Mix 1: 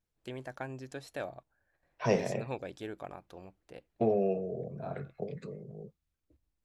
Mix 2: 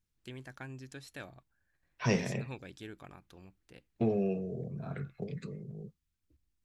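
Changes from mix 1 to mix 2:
second voice +4.5 dB; master: add peaking EQ 620 Hz -13 dB 1.4 oct

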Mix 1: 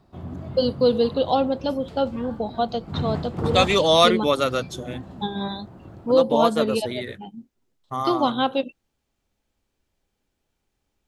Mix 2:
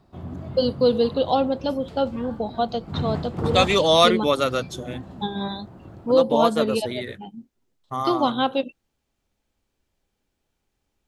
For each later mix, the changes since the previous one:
no change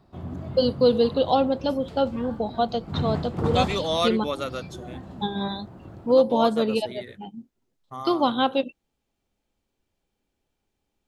second voice -8.5 dB

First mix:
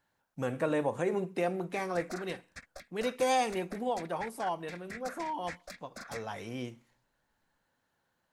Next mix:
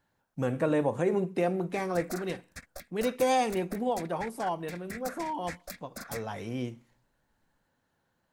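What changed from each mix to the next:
background: remove distance through air 63 m; master: add bass shelf 480 Hz +6.5 dB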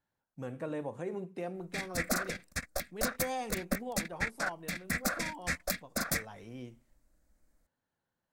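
speech -11.0 dB; background +9.0 dB

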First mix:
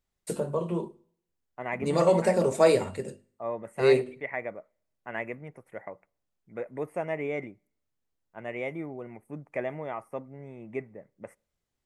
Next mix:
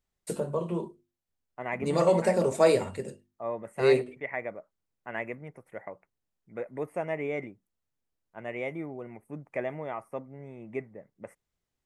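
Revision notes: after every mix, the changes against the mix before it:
reverb: off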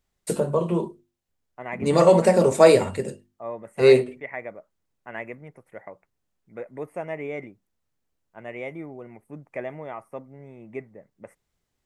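first voice +7.5 dB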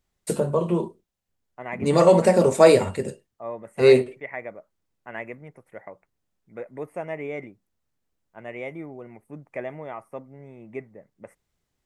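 first voice: remove hum notches 50/100/150/200/250/300/350 Hz

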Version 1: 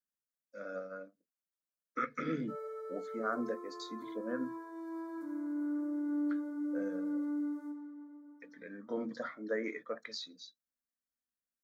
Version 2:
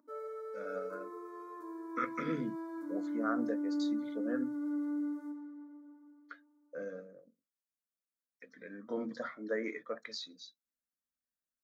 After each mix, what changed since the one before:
background: entry -2.40 s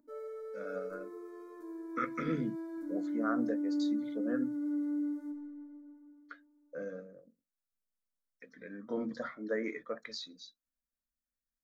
background: add peaking EQ 1.1 kHz -11 dB 0.66 oct; master: remove high-pass 210 Hz 6 dB/octave

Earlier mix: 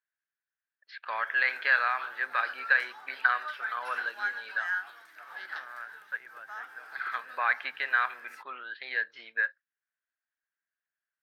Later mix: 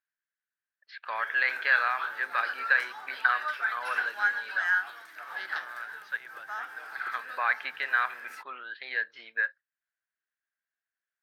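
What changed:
second voice: remove boxcar filter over 10 samples; background +5.5 dB

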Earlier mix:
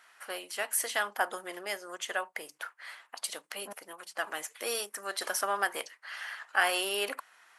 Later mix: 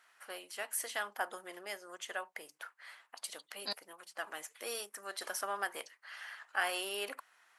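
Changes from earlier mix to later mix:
first voice -7.0 dB; second voice: remove low-pass 1.3 kHz 24 dB/octave

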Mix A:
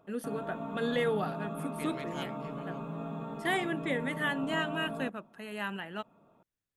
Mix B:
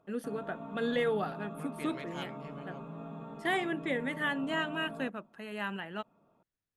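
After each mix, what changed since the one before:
background -5.0 dB; master: add treble shelf 7 kHz -7.5 dB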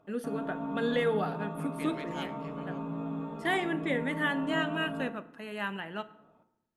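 reverb: on, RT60 0.85 s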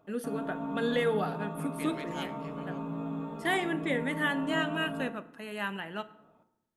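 master: add treble shelf 7 kHz +7.5 dB

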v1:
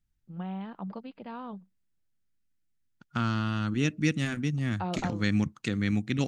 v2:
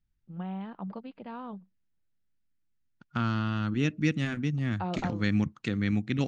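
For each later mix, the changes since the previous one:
master: add distance through air 100 m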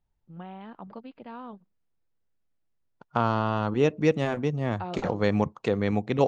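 first voice: add peaking EQ 190 Hz -9 dB 0.22 oct; second voice: add high-order bell 660 Hz +16 dB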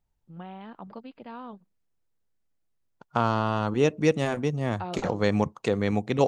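master: remove distance through air 100 m

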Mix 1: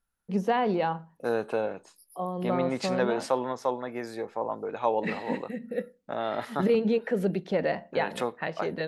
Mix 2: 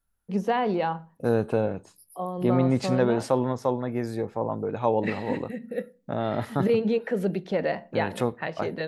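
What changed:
first voice: send +8.0 dB; second voice: remove frequency weighting A

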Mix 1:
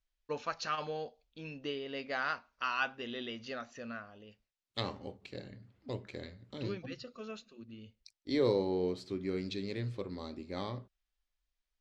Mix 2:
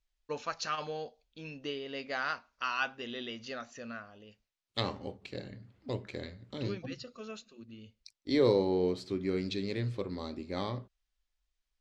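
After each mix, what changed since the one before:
first voice: remove distance through air 74 m; second voice +3.5 dB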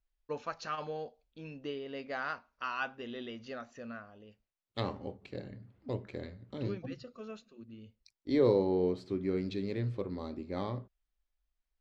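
master: add treble shelf 2.4 kHz -11.5 dB

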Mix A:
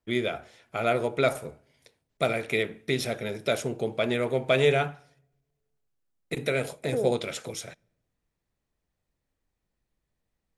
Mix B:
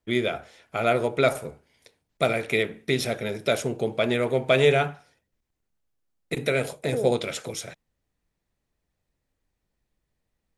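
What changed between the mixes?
first voice +3.5 dB; reverb: off

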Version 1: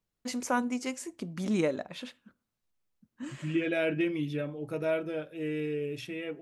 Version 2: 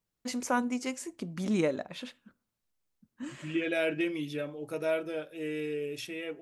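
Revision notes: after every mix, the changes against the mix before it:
second voice: add tone controls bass -8 dB, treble +7 dB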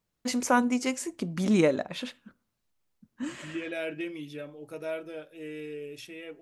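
first voice +5.5 dB; second voice -4.5 dB

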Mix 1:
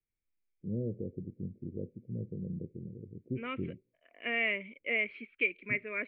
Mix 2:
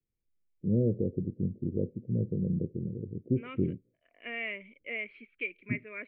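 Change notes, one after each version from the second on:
first voice +8.5 dB; second voice -5.5 dB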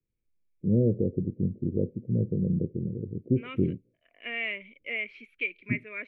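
first voice +3.5 dB; second voice: remove distance through air 380 m

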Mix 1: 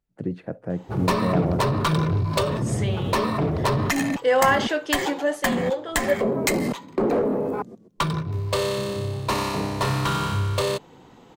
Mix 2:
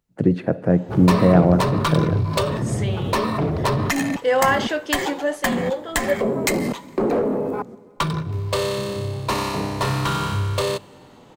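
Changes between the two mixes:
first voice +8.0 dB; reverb: on, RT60 2.6 s

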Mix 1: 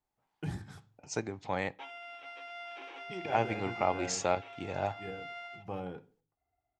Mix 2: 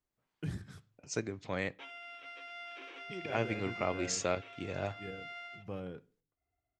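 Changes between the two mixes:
first voice: send -6.0 dB; master: add peaking EQ 830 Hz -13.5 dB 0.43 oct

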